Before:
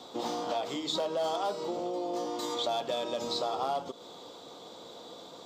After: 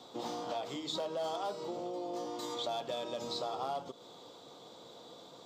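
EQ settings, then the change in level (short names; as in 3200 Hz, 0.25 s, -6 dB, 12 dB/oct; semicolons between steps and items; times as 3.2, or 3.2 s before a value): bell 130 Hz +6 dB 0.47 oct; -5.5 dB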